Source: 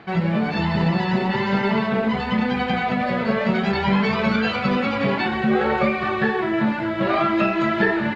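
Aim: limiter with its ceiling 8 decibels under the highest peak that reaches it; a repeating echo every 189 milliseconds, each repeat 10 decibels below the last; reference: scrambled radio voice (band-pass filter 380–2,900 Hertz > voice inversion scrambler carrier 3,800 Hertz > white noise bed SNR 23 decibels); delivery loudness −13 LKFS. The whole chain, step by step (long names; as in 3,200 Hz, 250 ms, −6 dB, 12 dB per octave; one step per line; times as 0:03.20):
brickwall limiter −14.5 dBFS
band-pass filter 380–2,900 Hz
repeating echo 189 ms, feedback 32%, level −10 dB
voice inversion scrambler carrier 3,800 Hz
white noise bed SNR 23 dB
level +10 dB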